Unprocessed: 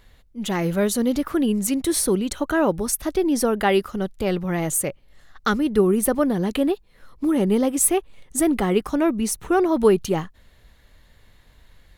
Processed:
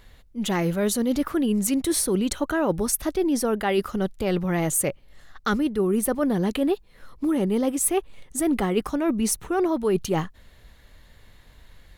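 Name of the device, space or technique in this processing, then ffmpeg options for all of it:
compression on the reversed sound: -af "areverse,acompressor=threshold=-21dB:ratio=10,areverse,volume=2dB"

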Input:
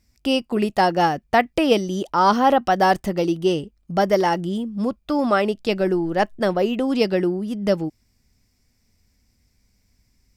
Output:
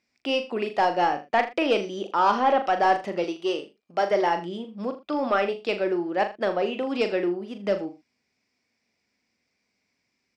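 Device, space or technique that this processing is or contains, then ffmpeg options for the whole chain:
intercom: -filter_complex "[0:a]highpass=330,lowpass=4200,equalizer=frequency=2400:width_type=o:width=0.25:gain=5.5,asoftclip=type=tanh:threshold=-9dB,asplit=2[link_01][link_02];[link_02]adelay=40,volume=-8.5dB[link_03];[link_01][link_03]amix=inputs=2:normalize=0,asettb=1/sr,asplit=3[link_04][link_05][link_06];[link_04]atrim=end=3.244[link_07];[link_05]atrim=start=3.24:end=4.11,asetpts=PTS-STARTPTS,afade=type=in:duration=0.004:curve=qsin,afade=type=out:start_time=0.866:duration=0.004:curve=qsin,bass=frequency=250:gain=-12,treble=frequency=4000:gain=4[link_08];[link_06]atrim=start=4.106[link_09];[link_07][link_08]acrossfade=duration=0.004:curve1=hsin:curve2=qsin[link_10];[link_10][link_09]acrossfade=duration=0.004:curve1=qsin:curve2=hsin,aecho=1:1:80:0.168,volume=-3dB"

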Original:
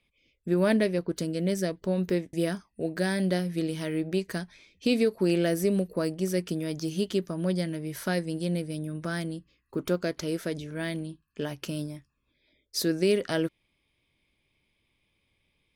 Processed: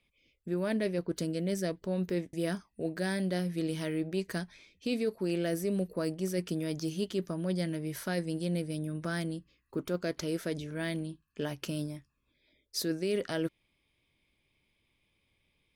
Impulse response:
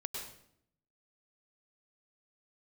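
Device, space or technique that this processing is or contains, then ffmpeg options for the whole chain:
compression on the reversed sound: -af "areverse,acompressor=threshold=-26dB:ratio=6,areverse,volume=-1.5dB"

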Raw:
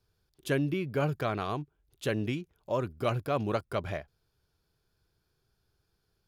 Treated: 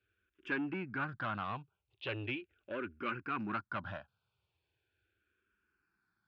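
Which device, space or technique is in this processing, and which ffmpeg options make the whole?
barber-pole phaser into a guitar amplifier: -filter_complex "[0:a]asplit=2[link_01][link_02];[link_02]afreqshift=-0.39[link_03];[link_01][link_03]amix=inputs=2:normalize=1,asoftclip=type=tanh:threshold=-29.5dB,highpass=100,equalizer=frequency=150:width_type=q:width=4:gain=-10,equalizer=frequency=450:width_type=q:width=4:gain=-7,equalizer=frequency=670:width_type=q:width=4:gain=-6,equalizer=frequency=1500:width_type=q:width=4:gain=9,equalizer=frequency=2600:width_type=q:width=4:gain=8,lowpass=frequency=3500:width=0.5412,lowpass=frequency=3500:width=1.3066,volume=-1dB"

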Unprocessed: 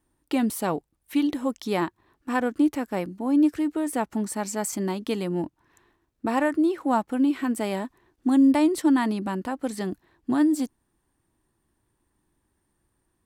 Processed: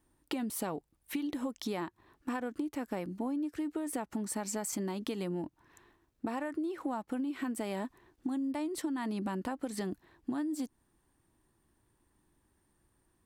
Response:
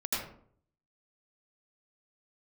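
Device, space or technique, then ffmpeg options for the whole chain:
serial compression, peaks first: -af "acompressor=threshold=-28dB:ratio=6,acompressor=threshold=-33dB:ratio=3"

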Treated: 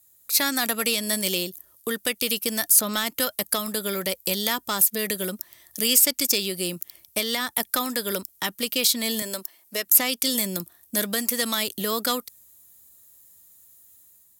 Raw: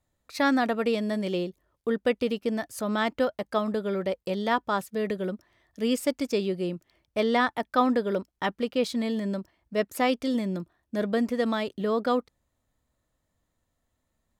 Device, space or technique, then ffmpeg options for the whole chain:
FM broadcast chain: -filter_complex "[0:a]highpass=64,dynaudnorm=framelen=150:gausssize=5:maxgain=5dB,acrossover=split=430|1000|5300[link_01][link_02][link_03][link_04];[link_01]acompressor=threshold=-29dB:ratio=4[link_05];[link_02]acompressor=threshold=-35dB:ratio=4[link_06];[link_03]acompressor=threshold=-26dB:ratio=4[link_07];[link_04]acompressor=threshold=-46dB:ratio=4[link_08];[link_05][link_06][link_07][link_08]amix=inputs=4:normalize=0,aemphasis=mode=production:type=75fm,alimiter=limit=-15dB:level=0:latency=1:release=261,asoftclip=type=hard:threshold=-18.5dB,lowpass=frequency=15000:width=0.5412,lowpass=frequency=15000:width=1.3066,aemphasis=mode=production:type=75fm,asettb=1/sr,asplit=3[link_09][link_10][link_11];[link_09]atrim=end=9.224[link_12];[link_10]atrim=start=9.22:end=9.86,asetpts=PTS-STARTPTS,afade=type=in:duration=0.004:curve=qsin,afade=type=out:start_time=0.636:duration=0.004:curve=qsin,highpass=320[link_13];[link_11]atrim=start=9.856[link_14];[link_12][link_13]acrossfade=duration=0.004:curve1=hsin:curve2=qsin[link_15];[link_15][link_14]acrossfade=duration=0.004:curve1=qsin:curve2=hsin"

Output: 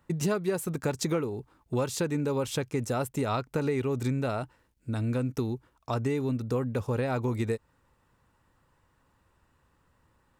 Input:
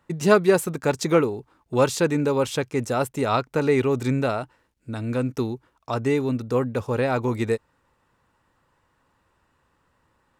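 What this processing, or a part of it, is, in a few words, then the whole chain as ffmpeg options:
ASMR close-microphone chain: -af "lowshelf=frequency=190:gain=7.5,acompressor=threshold=-22dB:ratio=5,highshelf=frequency=8700:gain=6.5,volume=-3.5dB"

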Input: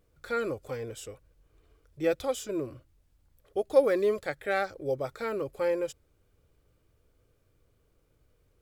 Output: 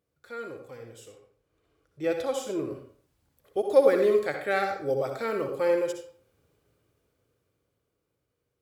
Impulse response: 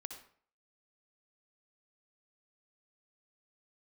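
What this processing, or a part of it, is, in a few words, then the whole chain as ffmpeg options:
far laptop microphone: -filter_complex "[1:a]atrim=start_sample=2205[link_01];[0:a][link_01]afir=irnorm=-1:irlink=0,highpass=110,dynaudnorm=framelen=230:gausssize=17:maxgain=12.5dB,asettb=1/sr,asplit=3[link_02][link_03][link_04];[link_02]atrim=end=1.084[link_05];[link_03]atrim=start=1.08:end=2.7,asetpts=PTS-STARTPTS,afade=type=in:duration=0.004:curve=qsin,afade=type=out:start_time=1.616:duration=0.004:curve=qsin,highshelf=frequency=10000:gain=-6[link_06];[link_04]atrim=start=2.696[link_07];[link_05][link_06]acrossfade=duration=0.004:curve1=hsin:curve2=qsin[link_08];[link_08][link_07]acrossfade=duration=0.004:curve1=qsin:curve2=hsin,volume=-4.5dB"

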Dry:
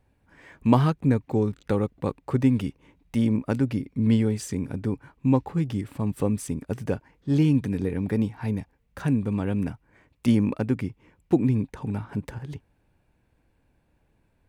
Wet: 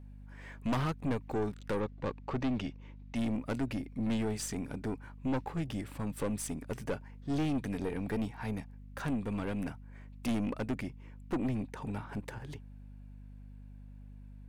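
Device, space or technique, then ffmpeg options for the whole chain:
valve amplifier with mains hum: -filter_complex "[0:a]asettb=1/sr,asplit=3[link_01][link_02][link_03];[link_01]atrim=end=1.804[link_04];[link_02]atrim=start=1.8:end=3.16,asetpts=PTS-STARTPTS,afade=type=in:duration=0.004:curve=qsin,afade=type=out:start_time=1.356:duration=0.004:curve=qsin,lowpass=frequency=6100:width=0.5412,lowpass=frequency=6100:width=1.3066[link_05];[link_03]atrim=start=3.156[link_06];[link_04][link_05]acrossfade=duration=0.004:curve1=hsin:curve2=qsin[link_07];[link_07][link_06]acrossfade=duration=0.004:curve1=qsin:curve2=hsin,lowshelf=frequency=230:gain=-11.5,aeval=exprs='(tanh(25.1*val(0)+0.35)-tanh(0.35))/25.1':channel_layout=same,aeval=exprs='val(0)+0.00398*(sin(2*PI*50*n/s)+sin(2*PI*2*50*n/s)/2+sin(2*PI*3*50*n/s)/3+sin(2*PI*4*50*n/s)/4+sin(2*PI*5*50*n/s)/5)':channel_layout=same"

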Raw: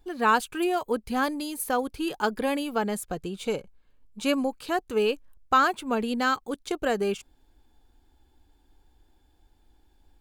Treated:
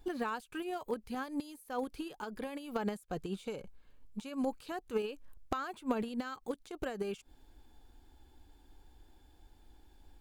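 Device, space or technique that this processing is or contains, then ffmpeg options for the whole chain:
de-esser from a sidechain: -filter_complex "[0:a]asplit=2[link_01][link_02];[link_02]highpass=5900,apad=whole_len=450064[link_03];[link_01][link_03]sidechaincompress=threshold=-57dB:ratio=8:attack=0.51:release=82,volume=2dB"

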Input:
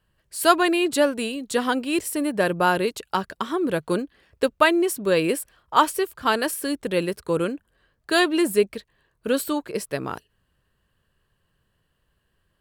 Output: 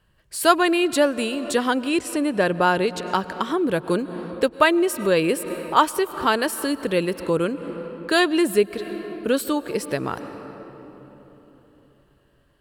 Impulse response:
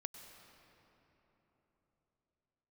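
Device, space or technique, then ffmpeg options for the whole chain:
ducked reverb: -filter_complex "[0:a]asettb=1/sr,asplit=3[link_01][link_02][link_03];[link_01]atrim=end=1.894[link_04];[link_02]atrim=start=1.89:end=3.14,asetpts=PTS-STARTPTS,afade=type=in:duration=0.004:curve=qsin,afade=type=out:start_time=1.246:duration=0.004:curve=qsin,lowpass=9500[link_05];[link_03]atrim=start=3.136[link_06];[link_04][link_05]acrossfade=duration=0.004:curve1=hsin:curve2=qsin[link_07];[link_07][link_06]acrossfade=duration=0.004:curve1=qsin:curve2=hsin,asplit=3[link_08][link_09][link_10];[1:a]atrim=start_sample=2205[link_11];[link_09][link_11]afir=irnorm=-1:irlink=0[link_12];[link_10]apad=whole_len=555860[link_13];[link_12][link_13]sidechaincompress=threshold=-34dB:ratio=10:attack=33:release=172,volume=4dB[link_14];[link_08][link_14]amix=inputs=2:normalize=0,highshelf=frequency=8700:gain=-4.5"

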